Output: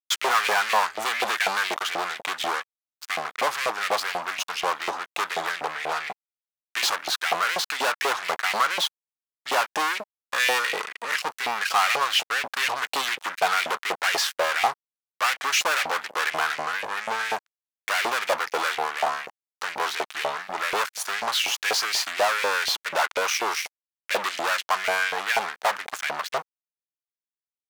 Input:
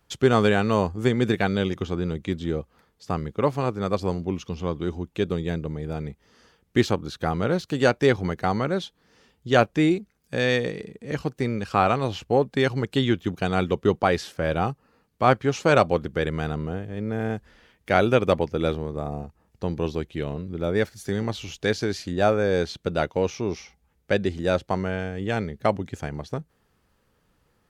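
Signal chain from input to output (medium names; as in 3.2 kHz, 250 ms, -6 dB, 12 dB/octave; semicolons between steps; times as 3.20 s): fuzz box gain 37 dB, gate -44 dBFS; LFO high-pass saw up 4.1 Hz 670–2400 Hz; trim -6 dB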